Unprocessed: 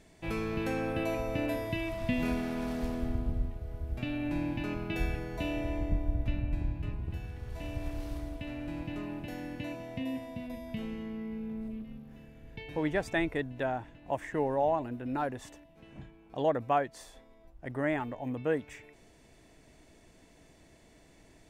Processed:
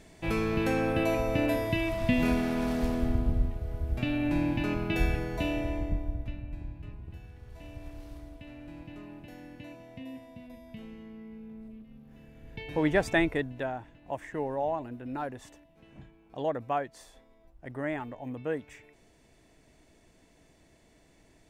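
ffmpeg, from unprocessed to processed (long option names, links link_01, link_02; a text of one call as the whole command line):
ffmpeg -i in.wav -af "volume=18dB,afade=type=out:start_time=5.22:duration=1.15:silence=0.251189,afade=type=in:start_time=11.89:duration=1.16:silence=0.223872,afade=type=out:start_time=13.05:duration=0.67:silence=0.375837" out.wav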